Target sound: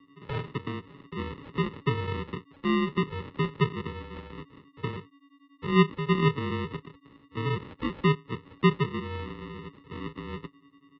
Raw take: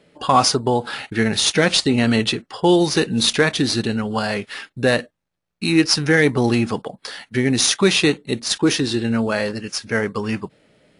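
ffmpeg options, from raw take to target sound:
-filter_complex "[0:a]asplit=3[s0][s1][s2];[s0]bandpass=f=300:t=q:w=8,volume=1[s3];[s1]bandpass=f=870:t=q:w=8,volume=0.501[s4];[s2]bandpass=f=2240:t=q:w=8,volume=0.355[s5];[s3][s4][s5]amix=inputs=3:normalize=0,aeval=exprs='val(0)+0.00178*sin(2*PI*2100*n/s)':c=same,aresample=16000,acrusher=samples=19:mix=1:aa=0.000001,aresample=44100,highpass=f=240:t=q:w=0.5412,highpass=f=240:t=q:w=1.307,lowpass=f=3600:t=q:w=0.5176,lowpass=f=3600:t=q:w=0.7071,lowpass=f=3600:t=q:w=1.932,afreqshift=-140"

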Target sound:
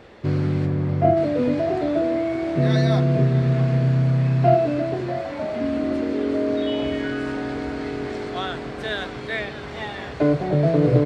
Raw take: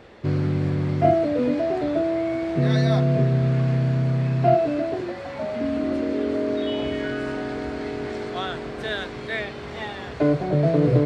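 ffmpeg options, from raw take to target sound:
-filter_complex "[0:a]asplit=3[s0][s1][s2];[s0]afade=t=out:st=0.65:d=0.02[s3];[s1]highshelf=f=2200:g=-9.5,afade=t=in:st=0.65:d=0.02,afade=t=out:st=1.16:d=0.02[s4];[s2]afade=t=in:st=1.16:d=0.02[s5];[s3][s4][s5]amix=inputs=3:normalize=0,asplit=2[s6][s7];[s7]adelay=641.4,volume=0.251,highshelf=f=4000:g=-14.4[s8];[s6][s8]amix=inputs=2:normalize=0,volume=1.12"

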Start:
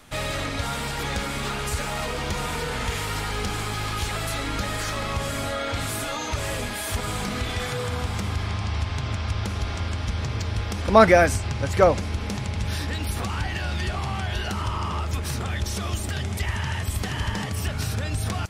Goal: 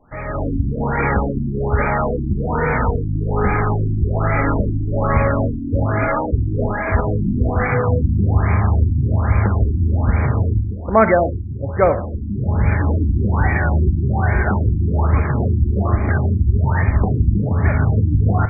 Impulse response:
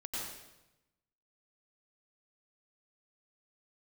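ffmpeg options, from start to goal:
-filter_complex "[0:a]dynaudnorm=f=250:g=3:m=4.73,asplit=2[s0][s1];[1:a]atrim=start_sample=2205,asetrate=83790,aresample=44100[s2];[s1][s2]afir=irnorm=-1:irlink=0,volume=0.596[s3];[s0][s3]amix=inputs=2:normalize=0,afftfilt=real='re*lt(b*sr/1024,340*pow(2500/340,0.5+0.5*sin(2*PI*1.2*pts/sr)))':imag='im*lt(b*sr/1024,340*pow(2500/340,0.5+0.5*sin(2*PI*1.2*pts/sr)))':win_size=1024:overlap=0.75,volume=0.75"

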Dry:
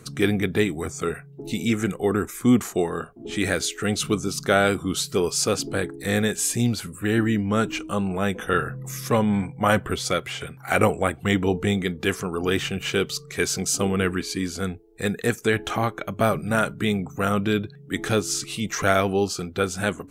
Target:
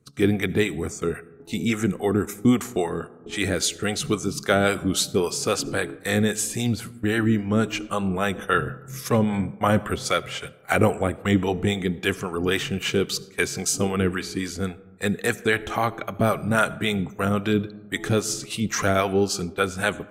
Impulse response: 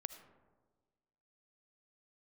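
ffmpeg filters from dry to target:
-filter_complex "[0:a]agate=range=0.126:threshold=0.0224:ratio=16:detection=peak,acrossover=split=500[s0][s1];[s0]aeval=exprs='val(0)*(1-0.7/2+0.7/2*cos(2*PI*3.7*n/s))':c=same[s2];[s1]aeval=exprs='val(0)*(1-0.7/2-0.7/2*cos(2*PI*3.7*n/s))':c=same[s3];[s2][s3]amix=inputs=2:normalize=0,asplit=2[s4][s5];[1:a]atrim=start_sample=2205[s6];[s5][s6]afir=irnorm=-1:irlink=0,volume=0.75[s7];[s4][s7]amix=inputs=2:normalize=0"

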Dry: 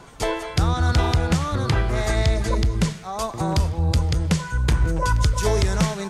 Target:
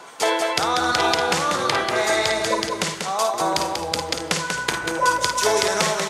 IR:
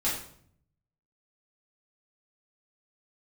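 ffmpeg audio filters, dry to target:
-af "highpass=470,aecho=1:1:51|57|190|266:0.355|0.282|0.562|0.141,volume=1.88"

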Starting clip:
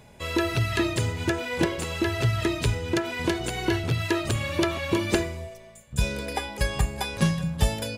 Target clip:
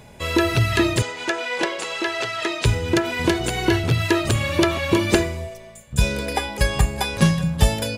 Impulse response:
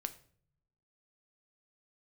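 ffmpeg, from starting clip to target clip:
-filter_complex "[0:a]asettb=1/sr,asplit=3[s0][s1][s2];[s0]atrim=end=1.024[s3];[s1]atrim=start=1.02:end=2.65,asetpts=PTS-STARTPTS,afade=t=in:d=0.004:c=qsin,afade=t=out:st=1.626:d=0.004:c=qsin,highpass=520,lowpass=7500[s4];[s2]atrim=start=2.646[s5];[s3][s4]acrossfade=d=0.004:c1=hsin:c2=qsin[s6];[s6][s5]acrossfade=d=0.004:c1=qsin:c2=hsin,volume=2"

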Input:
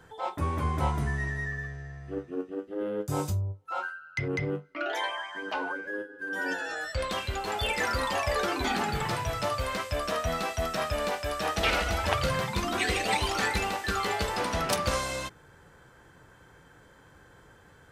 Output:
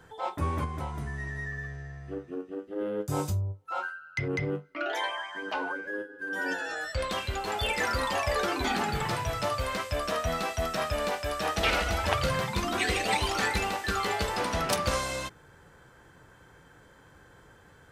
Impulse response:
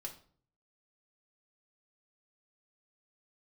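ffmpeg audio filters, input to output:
-filter_complex "[0:a]asettb=1/sr,asplit=3[s0][s1][s2];[s0]atrim=end=0.644[s3];[s1]atrim=start=0.64:end=2.76,asetpts=PTS-STARTPTS,afade=t=in:d=0.004:c=qsin,afade=t=out:st=2.116:d=0.004:c=qsin,acompressor=threshold=0.0282:ratio=10[s4];[s2]atrim=start=2.756[s5];[s3][s4]acrossfade=d=0.004:c1=hsin:c2=qsin[s6];[s6][s5]acrossfade=d=0.004:c1=qsin:c2=hsin"

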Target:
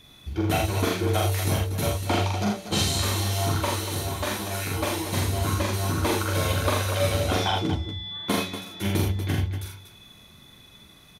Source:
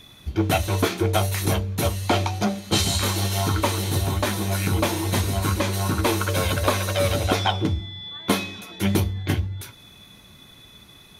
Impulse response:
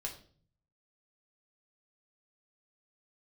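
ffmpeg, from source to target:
-filter_complex "[0:a]asettb=1/sr,asplit=3[s0][s1][s2];[s0]atrim=end=3.554[s3];[s1]atrim=start=3.55:end=5.13,asetpts=PTS-STARTPTS,afade=t=in:d=0.004:c=qsin,afade=t=out:st=1.576:d=0.004:c=qsin,equalizer=f=110:t=o:w=2.5:g=-6.5[s4];[s2]atrim=start=5.126[s5];[s3][s4]acrossfade=d=0.004:c1=hsin:c2=qsin[s6];[s6][s5]acrossfade=d=0.004:c1=qsin:c2=hsin,asplit=2[s7][s8];[s8]aecho=0:1:43.73|81.63|239.1:0.794|0.562|0.316[s9];[s7][s9]amix=inputs=2:normalize=0,volume=0.531"

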